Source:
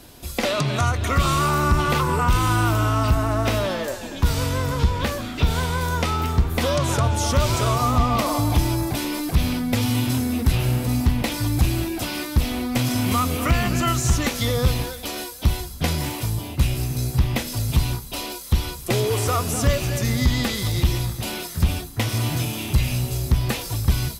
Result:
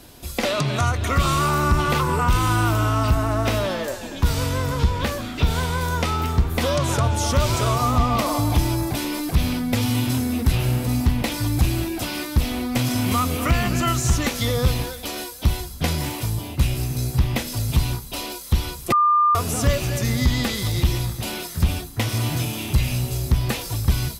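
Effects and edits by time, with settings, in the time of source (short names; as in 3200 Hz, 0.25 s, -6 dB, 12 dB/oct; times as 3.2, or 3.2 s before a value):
18.92–19.35 bleep 1200 Hz -13.5 dBFS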